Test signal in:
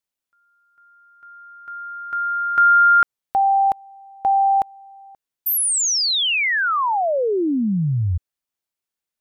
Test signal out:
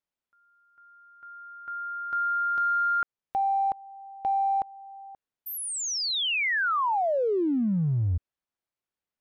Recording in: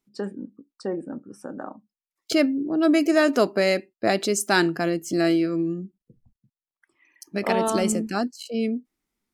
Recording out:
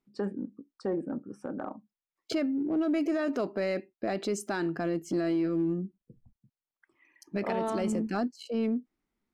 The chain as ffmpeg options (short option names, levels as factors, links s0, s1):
-af "lowpass=f=1900:p=1,alimiter=limit=0.15:level=0:latency=1:release=339,acompressor=threshold=0.0708:ratio=6:attack=0.19:release=20:knee=6:detection=rms"